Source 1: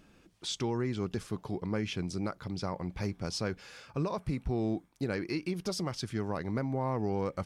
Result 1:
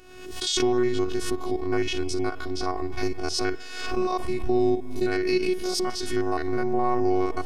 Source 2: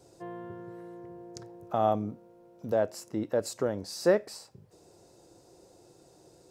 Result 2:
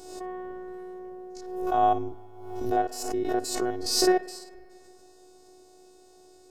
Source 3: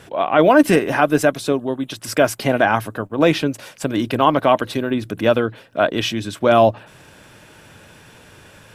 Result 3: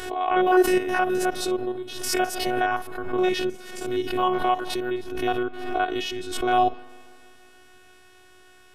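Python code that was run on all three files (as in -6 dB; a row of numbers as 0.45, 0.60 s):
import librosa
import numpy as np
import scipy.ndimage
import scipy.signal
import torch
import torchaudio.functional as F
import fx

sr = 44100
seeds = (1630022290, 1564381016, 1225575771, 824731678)

y = fx.spec_steps(x, sr, hold_ms=50)
y = fx.dynamic_eq(y, sr, hz=300.0, q=7.7, threshold_db=-36.0, ratio=4.0, max_db=3)
y = fx.robotise(y, sr, hz=366.0)
y = fx.rev_spring(y, sr, rt60_s=2.4, pass_ms=(47,), chirp_ms=25, drr_db=16.0)
y = fx.pre_swell(y, sr, db_per_s=54.0)
y = librosa.util.normalize(y) * 10.0 ** (-6 / 20.0)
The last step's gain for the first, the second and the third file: +12.0, +6.0, -4.5 dB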